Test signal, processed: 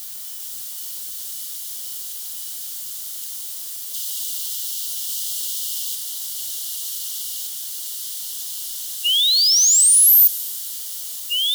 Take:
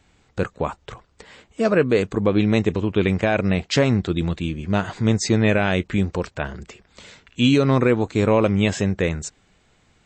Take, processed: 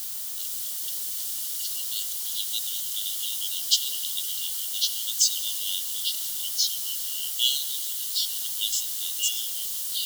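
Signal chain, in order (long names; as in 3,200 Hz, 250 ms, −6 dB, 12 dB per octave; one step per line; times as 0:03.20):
mu-law and A-law mismatch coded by A
background noise white −43 dBFS
delay with pitch and tempo change per echo 398 ms, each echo −3 semitones, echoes 3
linear-phase brick-wall high-pass 2,800 Hz
spectral tilt +3 dB per octave
comb and all-pass reverb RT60 2.9 s, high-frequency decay 0.95×, pre-delay 35 ms, DRR 15 dB
in parallel at −9 dB: bit-depth reduction 6 bits, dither triangular
on the sum: level −3.5 dB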